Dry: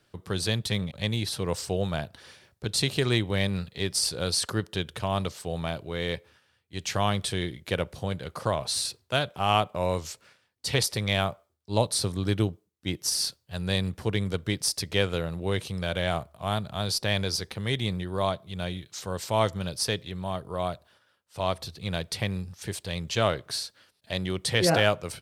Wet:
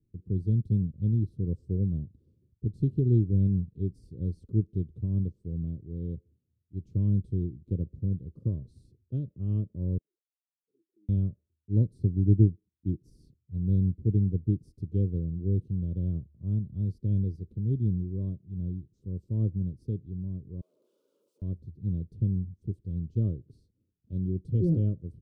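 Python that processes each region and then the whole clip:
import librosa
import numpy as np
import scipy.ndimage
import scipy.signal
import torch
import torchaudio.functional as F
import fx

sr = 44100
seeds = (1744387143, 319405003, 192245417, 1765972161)

y = fx.chain(x, sr, fx.highpass(hz=200.0, slope=24),
    fx.level_steps(step_db=23),
    fx.auto_wah(base_hz=320.0, top_hz=1800.0, q=14.0, full_db=-42.5, direction='down'), at=(9.98, 11.09))
y = fx.chain(y, sr, fx.clip_1bit(),
    fx.highpass(hz=540.0, slope=24),
    fx.doubler(ms=25.0, db=-12.0), at=(20.61, 21.42))
y = scipy.signal.sosfilt(scipy.signal.cheby2(4, 40, 690.0, 'lowpass', fs=sr, output='sos'), y)
y = fx.low_shelf(y, sr, hz=120.0, db=9.5)
y = fx.upward_expand(y, sr, threshold_db=-35.0, expansion=1.5)
y = y * 10.0 ** (3.0 / 20.0)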